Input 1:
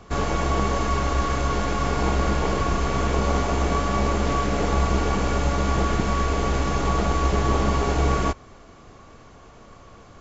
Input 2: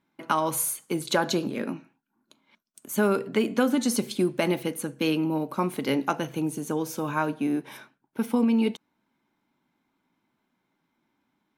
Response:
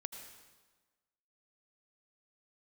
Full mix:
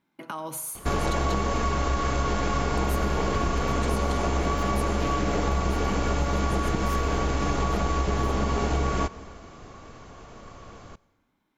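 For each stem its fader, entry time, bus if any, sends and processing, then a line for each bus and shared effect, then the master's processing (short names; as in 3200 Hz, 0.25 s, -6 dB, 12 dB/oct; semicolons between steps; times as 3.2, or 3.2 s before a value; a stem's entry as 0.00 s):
+0.5 dB, 0.75 s, send -11.5 dB, dry
-3.5 dB, 0.00 s, send -3.5 dB, limiter -19.5 dBFS, peak gain reduction 10.5 dB; compressor 3:1, threshold -32 dBFS, peak gain reduction 7.5 dB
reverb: on, RT60 1.3 s, pre-delay 72 ms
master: compressor, threshold -21 dBFS, peak gain reduction 7.5 dB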